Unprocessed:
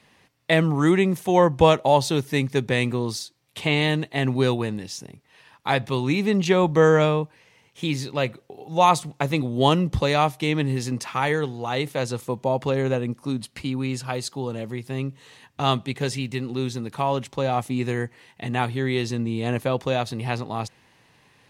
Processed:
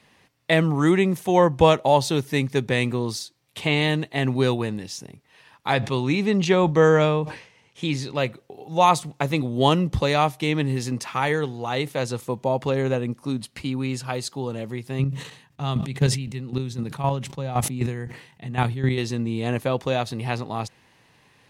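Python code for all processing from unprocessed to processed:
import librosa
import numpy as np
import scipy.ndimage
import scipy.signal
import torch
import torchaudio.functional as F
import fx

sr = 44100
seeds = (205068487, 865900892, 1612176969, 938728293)

y = fx.chain(x, sr, fx.lowpass(hz=9100.0, slope=12),
    fx.sustainer(db_per_s=110.0), at=(5.73, 8.14))
y = fx.chain(y, sr, fx.peak_eq(hz=150.0, db=11.0, octaves=0.71),
    fx.chopper(hz=3.9, depth_pct=65, duty_pct=20),
    fx.sustainer(db_per_s=87.0), at=(14.99, 18.98))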